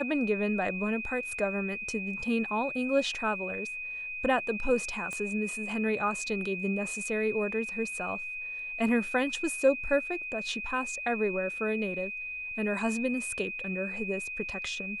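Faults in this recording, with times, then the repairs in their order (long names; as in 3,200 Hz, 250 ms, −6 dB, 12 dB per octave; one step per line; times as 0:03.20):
whistle 2,500 Hz −35 dBFS
0:05.13: click −24 dBFS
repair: click removal
notch filter 2,500 Hz, Q 30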